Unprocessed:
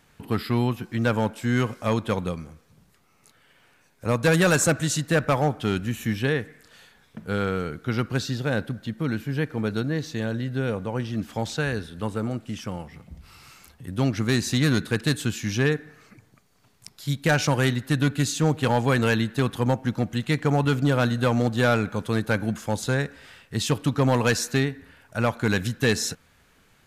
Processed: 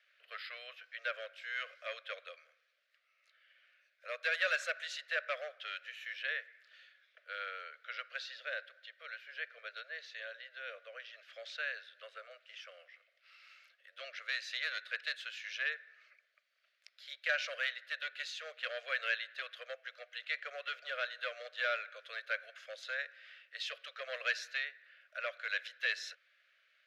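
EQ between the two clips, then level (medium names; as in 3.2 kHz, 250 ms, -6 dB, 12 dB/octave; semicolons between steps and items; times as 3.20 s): steep high-pass 580 Hz 72 dB/octave; Butterworth band-stop 880 Hz, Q 0.74; distance through air 300 m; -1.5 dB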